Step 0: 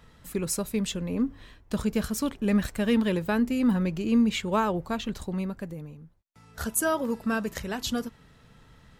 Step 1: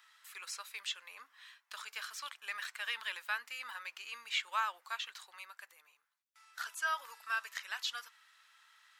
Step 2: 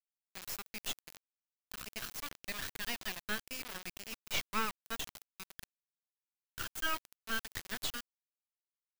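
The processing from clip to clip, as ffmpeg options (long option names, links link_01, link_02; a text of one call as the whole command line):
ffmpeg -i in.wav -filter_complex "[0:a]highpass=frequency=1200:width=0.5412,highpass=frequency=1200:width=1.3066,acrossover=split=5200[link_01][link_02];[link_02]acompressor=threshold=-52dB:ratio=4:attack=1:release=60[link_03];[link_01][link_03]amix=inputs=2:normalize=0,volume=-1.5dB" out.wav
ffmpeg -i in.wav -af "acrusher=bits=4:dc=4:mix=0:aa=0.000001,aexciter=amount=1.3:drive=4:freq=12000,volume=3dB" out.wav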